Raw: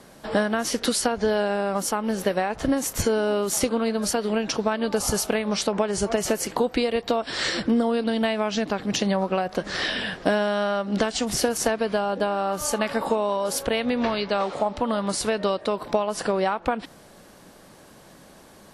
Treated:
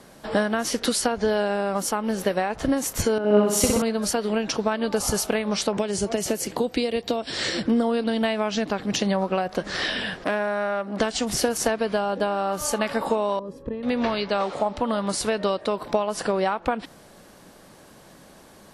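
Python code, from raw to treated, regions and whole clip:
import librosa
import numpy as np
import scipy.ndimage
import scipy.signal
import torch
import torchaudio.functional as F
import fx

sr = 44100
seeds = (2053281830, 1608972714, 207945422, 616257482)

y = fx.chain(x, sr, fx.peak_eq(hz=77.0, db=8.5, octaves=1.9),
    fx.room_flutter(wall_m=10.7, rt60_s=1.4),
    fx.band_widen(depth_pct=100), at=(3.18, 3.82))
y = fx.chain(y, sr, fx.highpass(hz=50.0, slope=12),
    fx.peak_eq(hz=1200.0, db=-7.0, octaves=1.6),
    fx.band_squash(depth_pct=40), at=(5.77, 7.65))
y = fx.chain(y, sr, fx.highpass(hz=220.0, slope=12),
    fx.band_shelf(hz=4600.0, db=-8.0, octaves=1.7),
    fx.transformer_sat(knee_hz=1700.0), at=(10.24, 11.0))
y = fx.chain(y, sr, fx.moving_average(points=60),
    fx.clip_hard(threshold_db=-20.0), at=(13.39, 13.83))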